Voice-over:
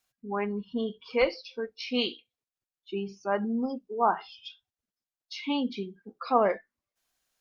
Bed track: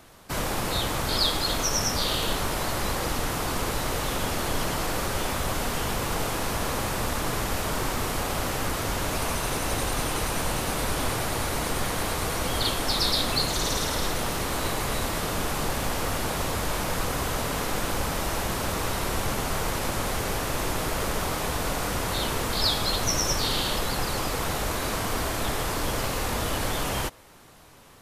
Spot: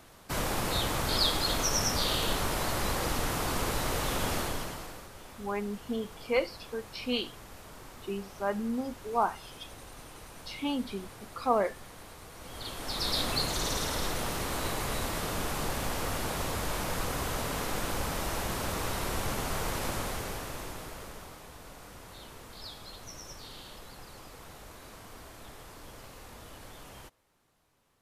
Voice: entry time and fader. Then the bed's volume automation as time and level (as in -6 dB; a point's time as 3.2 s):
5.15 s, -3.0 dB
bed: 4.37 s -3 dB
5.1 s -20.5 dB
12.32 s -20.5 dB
13.18 s -5 dB
19.92 s -5 dB
21.46 s -20.5 dB